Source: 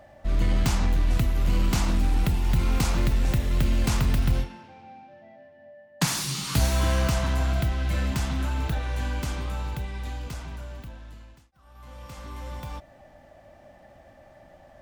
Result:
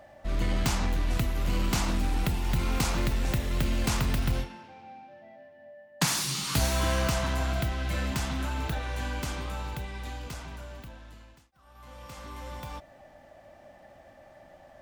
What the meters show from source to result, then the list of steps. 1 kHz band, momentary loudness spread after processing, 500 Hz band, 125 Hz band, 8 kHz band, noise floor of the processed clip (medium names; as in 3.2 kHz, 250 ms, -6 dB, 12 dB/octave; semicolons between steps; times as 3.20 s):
-0.5 dB, 18 LU, -1.0 dB, -5.0 dB, 0.0 dB, -55 dBFS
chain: bass shelf 200 Hz -6 dB